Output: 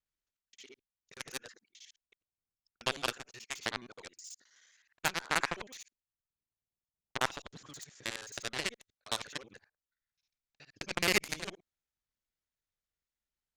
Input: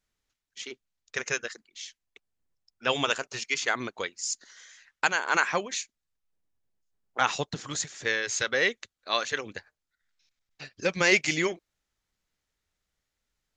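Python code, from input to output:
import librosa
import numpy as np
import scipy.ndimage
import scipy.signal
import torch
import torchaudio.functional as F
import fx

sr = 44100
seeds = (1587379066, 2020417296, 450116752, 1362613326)

y = fx.local_reverse(x, sr, ms=53.0)
y = fx.cheby_harmonics(y, sr, harmonics=(5, 7), levels_db=(-19, -11), full_scale_db=-6.5)
y = y * librosa.db_to_amplitude(-5.5)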